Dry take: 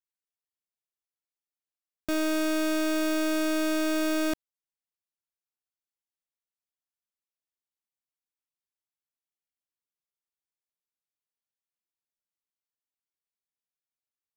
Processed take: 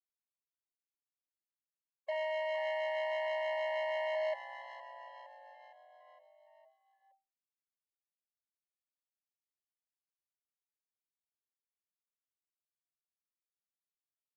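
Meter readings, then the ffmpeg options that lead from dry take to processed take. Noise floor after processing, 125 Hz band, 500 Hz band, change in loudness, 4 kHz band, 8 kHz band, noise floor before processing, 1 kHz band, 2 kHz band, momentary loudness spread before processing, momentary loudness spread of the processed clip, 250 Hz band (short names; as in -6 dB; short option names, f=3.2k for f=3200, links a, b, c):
under -85 dBFS, n/a, -3.0 dB, -8.5 dB, -10.5 dB, under -30 dB, under -85 dBFS, -2.0 dB, -6.0 dB, 5 LU, 16 LU, under -40 dB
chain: -filter_complex "[0:a]afftfilt=real='re*gte(hypot(re,im),0.0178)':imag='im*gte(hypot(re,im),0.0178)':win_size=1024:overlap=0.75,acrossover=split=700|3000[a][b][c];[a]acontrast=72[d];[b]tremolo=f=6.3:d=0.88[e];[d][e][c]amix=inputs=3:normalize=0,afwtdn=0.0398,asoftclip=type=tanh:threshold=-30dB,equalizer=f=1.8k:t=o:w=2:g=6,asplit=7[f][g][h][i][j][k][l];[g]adelay=463,afreqshift=-130,volume=-8dB[m];[h]adelay=926,afreqshift=-260,volume=-13.4dB[n];[i]adelay=1389,afreqshift=-390,volume=-18.7dB[o];[j]adelay=1852,afreqshift=-520,volume=-24.1dB[p];[k]adelay=2315,afreqshift=-650,volume=-29.4dB[q];[l]adelay=2778,afreqshift=-780,volume=-34.8dB[r];[f][m][n][o][p][q][r]amix=inputs=7:normalize=0,aresample=22050,aresample=44100,equalizer=f=530:t=o:w=0.53:g=5,afftfilt=real='re*eq(mod(floor(b*sr/1024/550),2),1)':imag='im*eq(mod(floor(b*sr/1024/550),2),1)':win_size=1024:overlap=0.75"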